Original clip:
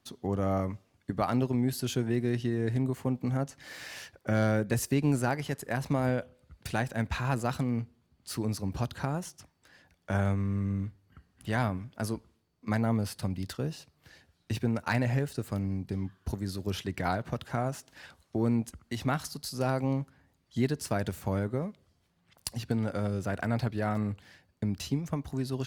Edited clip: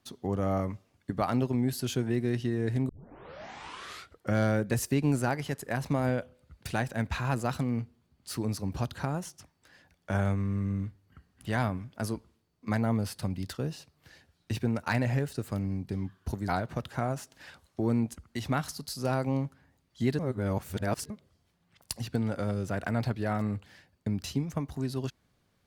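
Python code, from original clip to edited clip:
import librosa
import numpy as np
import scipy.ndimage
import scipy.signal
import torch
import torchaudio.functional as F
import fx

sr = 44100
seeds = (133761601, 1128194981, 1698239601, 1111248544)

y = fx.edit(x, sr, fx.tape_start(start_s=2.89, length_s=1.46),
    fx.cut(start_s=16.48, length_s=0.56),
    fx.reverse_span(start_s=20.75, length_s=0.91), tone=tone)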